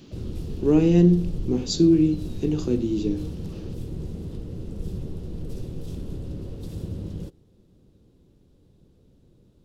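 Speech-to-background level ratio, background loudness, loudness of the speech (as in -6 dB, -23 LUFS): 13.5 dB, -35.0 LUFS, -21.5 LUFS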